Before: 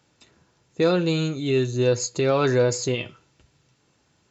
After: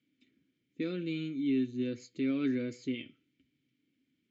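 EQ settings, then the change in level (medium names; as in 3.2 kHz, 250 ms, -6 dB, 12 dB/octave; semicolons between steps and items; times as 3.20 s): bass shelf 260 Hz +6 dB; dynamic bell 1.1 kHz, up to +6 dB, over -35 dBFS, Q 0.93; vowel filter i; -2.5 dB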